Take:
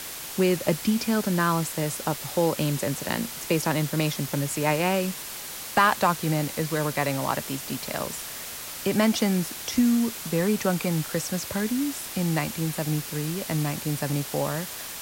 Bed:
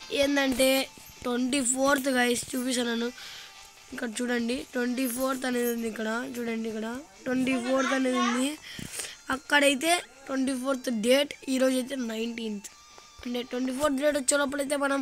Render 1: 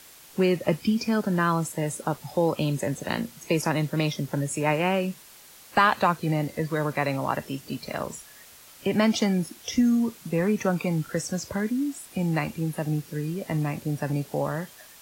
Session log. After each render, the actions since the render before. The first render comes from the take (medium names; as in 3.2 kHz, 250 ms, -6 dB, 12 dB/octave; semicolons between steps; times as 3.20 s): noise print and reduce 13 dB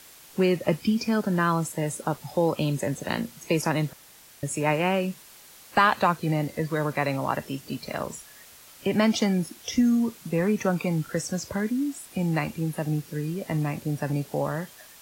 3.93–4.43 s: room tone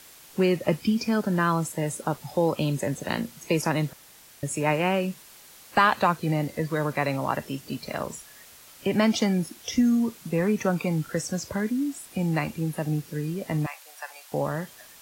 13.66–14.32 s: inverse Chebyshev high-pass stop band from 240 Hz, stop band 60 dB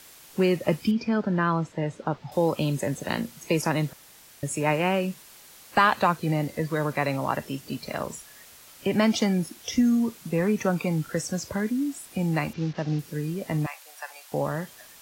0.91–2.32 s: distance through air 190 m; 12.53–12.99 s: CVSD coder 32 kbps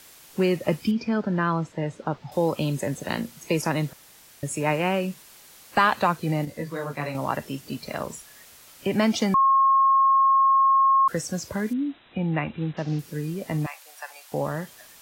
6.45–7.15 s: detune thickener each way 21 cents; 9.34–11.08 s: bleep 1.08 kHz -15 dBFS; 11.73–12.77 s: brick-wall FIR low-pass 4 kHz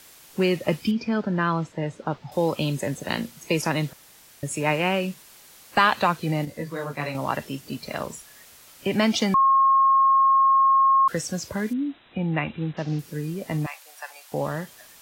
dynamic bell 3.3 kHz, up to +5 dB, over -41 dBFS, Q 0.93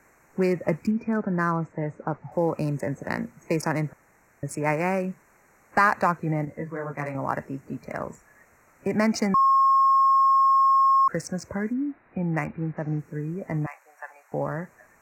local Wiener filter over 9 samples; Chebyshev band-stop 2.1–5.1 kHz, order 2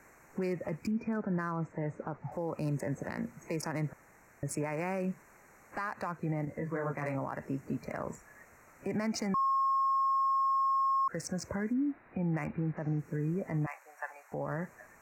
compression 4:1, threshold -28 dBFS, peak gain reduction 11.5 dB; peak limiter -25.5 dBFS, peak gain reduction 11.5 dB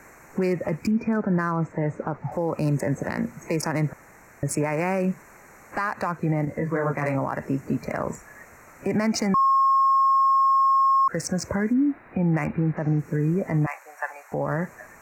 trim +10 dB